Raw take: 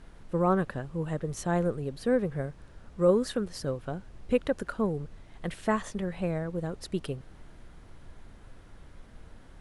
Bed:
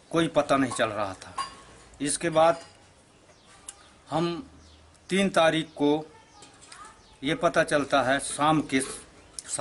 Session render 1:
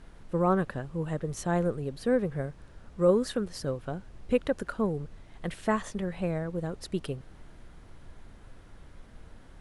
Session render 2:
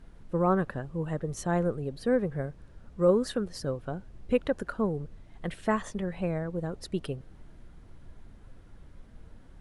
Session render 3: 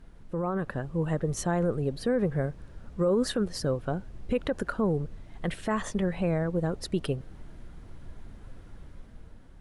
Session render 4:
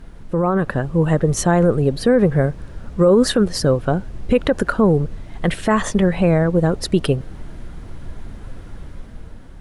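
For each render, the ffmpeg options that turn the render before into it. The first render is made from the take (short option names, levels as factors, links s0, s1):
-af anull
-af "afftdn=nr=6:nf=-52"
-af "alimiter=limit=0.075:level=0:latency=1:release=39,dynaudnorm=f=180:g=9:m=1.78"
-af "volume=3.98"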